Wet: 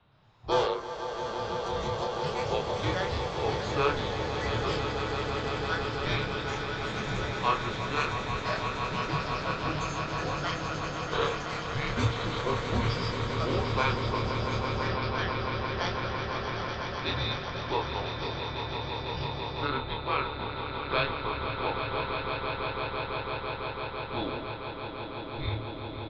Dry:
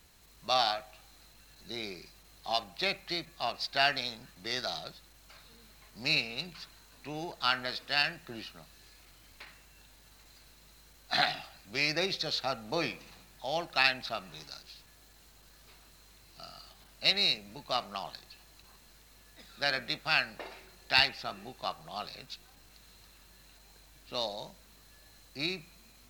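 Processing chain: bass shelf 110 Hz +10.5 dB; mistuned SSB -270 Hz 160–3600 Hz; ten-band graphic EQ 125 Hz +9 dB, 1 kHz +7 dB, 2 kHz -9 dB; echo with a slow build-up 167 ms, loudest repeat 8, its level -9 dB; ever faster or slower copies 118 ms, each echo +5 st, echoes 2, each echo -6 dB; doubling 28 ms -4 dB; trim -1.5 dB

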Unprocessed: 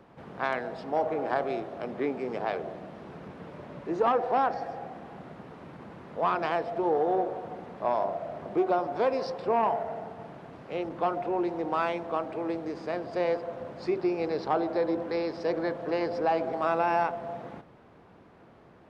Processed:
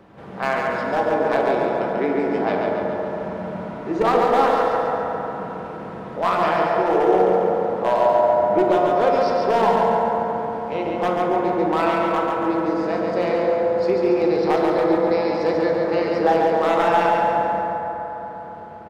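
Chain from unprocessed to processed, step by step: one-sided wavefolder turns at -19 dBFS; feedback delay 140 ms, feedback 54%, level -4 dB; reverberation RT60 4.2 s, pre-delay 5 ms, DRR 0 dB; trim +5 dB

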